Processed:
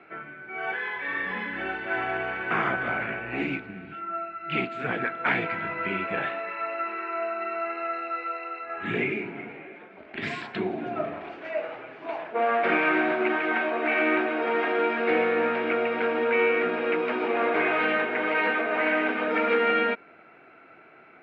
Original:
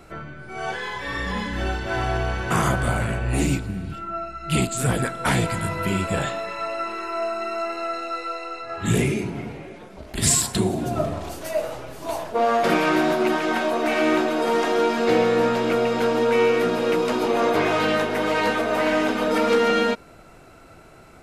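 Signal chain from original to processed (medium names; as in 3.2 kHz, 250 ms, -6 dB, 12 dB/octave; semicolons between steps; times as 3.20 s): cabinet simulation 300–2700 Hz, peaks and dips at 550 Hz -5 dB, 1 kHz -4 dB, 1.6 kHz +4 dB, 2.3 kHz +7 dB; trim -2.5 dB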